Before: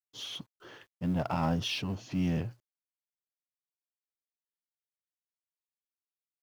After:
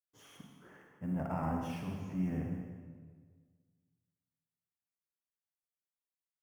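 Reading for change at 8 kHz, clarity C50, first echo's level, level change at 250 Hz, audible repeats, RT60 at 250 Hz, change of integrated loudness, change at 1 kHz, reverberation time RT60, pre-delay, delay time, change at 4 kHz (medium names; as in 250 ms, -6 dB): under -10 dB, 2.0 dB, -12.5 dB, -4.0 dB, 1, 1.8 s, -5.0 dB, -5.0 dB, 1.7 s, 37 ms, 198 ms, -21.0 dB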